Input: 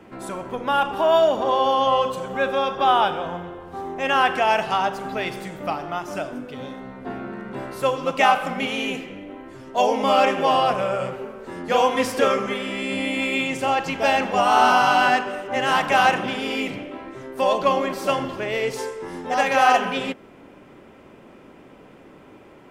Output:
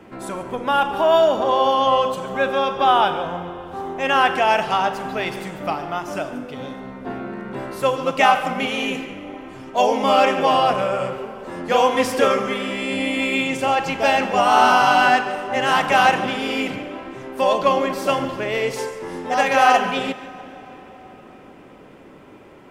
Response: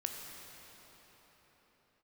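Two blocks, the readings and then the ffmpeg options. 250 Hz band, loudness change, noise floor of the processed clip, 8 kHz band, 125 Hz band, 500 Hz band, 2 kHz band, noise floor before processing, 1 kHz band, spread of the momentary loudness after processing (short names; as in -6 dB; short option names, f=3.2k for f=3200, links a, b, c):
+2.5 dB, +2.0 dB, -44 dBFS, +2.0 dB, +2.0 dB, +2.0 dB, +2.0 dB, -47 dBFS, +2.0 dB, 16 LU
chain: -filter_complex "[0:a]asplit=2[a][b];[1:a]atrim=start_sample=2205,adelay=143[c];[b][c]afir=irnorm=-1:irlink=0,volume=-15.5dB[d];[a][d]amix=inputs=2:normalize=0,volume=2dB"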